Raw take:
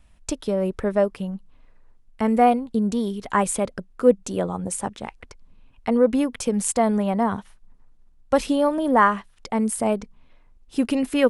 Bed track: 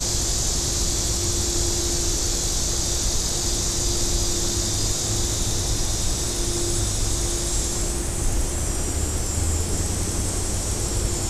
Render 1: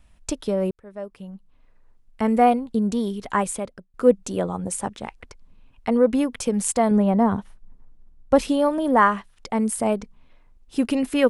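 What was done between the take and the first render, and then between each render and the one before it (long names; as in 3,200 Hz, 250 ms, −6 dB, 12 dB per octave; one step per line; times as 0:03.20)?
0:00.71–0:02.22: fade in
0:03.25–0:03.94: fade out, to −19 dB
0:06.91–0:08.39: tilt shelving filter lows +5 dB, about 930 Hz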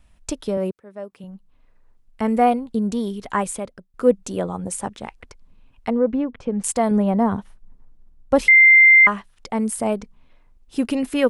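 0:00.57–0:01.24: high-pass filter 140 Hz
0:05.90–0:06.64: head-to-tape spacing loss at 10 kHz 38 dB
0:08.48–0:09.07: beep over 2,090 Hz −7 dBFS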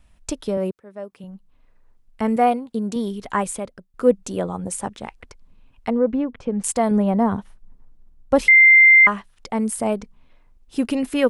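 0:02.36–0:02.96: high-pass filter 220 Hz 6 dB per octave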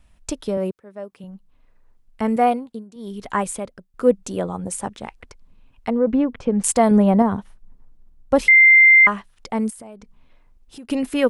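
0:02.61–0:03.21: duck −18 dB, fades 0.24 s
0:06.07–0:07.22: clip gain +4 dB
0:09.70–0:10.90: downward compressor 4 to 1, threshold −39 dBFS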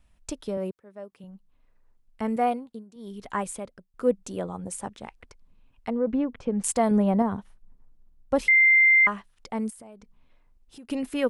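level −7 dB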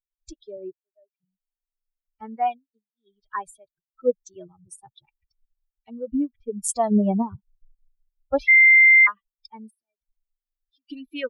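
spectral dynamics exaggerated over time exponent 3
automatic gain control gain up to 5 dB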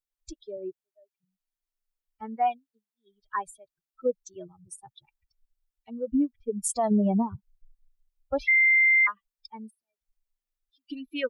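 downward compressor 2.5 to 1, threshold −17 dBFS, peak gain reduction 4 dB
brickwall limiter −16.5 dBFS, peak gain reduction 7.5 dB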